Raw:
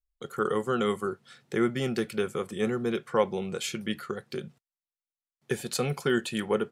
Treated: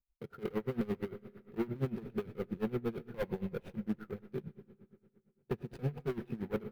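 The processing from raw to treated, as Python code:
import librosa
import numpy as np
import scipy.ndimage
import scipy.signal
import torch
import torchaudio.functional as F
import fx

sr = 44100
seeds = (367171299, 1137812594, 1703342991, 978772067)

y = scipy.signal.medfilt(x, 41)
y = fx.low_shelf(y, sr, hz=400.0, db=-6.5)
y = fx.notch(y, sr, hz=1100.0, q=8.9)
y = fx.rev_freeverb(y, sr, rt60_s=2.6, hf_ratio=0.8, predelay_ms=30, drr_db=13.5)
y = np.repeat(scipy.signal.resample_poly(y, 1, 3), 3)[:len(y)]
y = np.clip(y, -10.0 ** (-30.0 / 20.0), 10.0 ** (-30.0 / 20.0))
y = fx.bass_treble(y, sr, bass_db=11, treble_db=-8)
y = y * 10.0 ** (-21 * (0.5 - 0.5 * np.cos(2.0 * np.pi * 8.7 * np.arange(len(y)) / sr)) / 20.0)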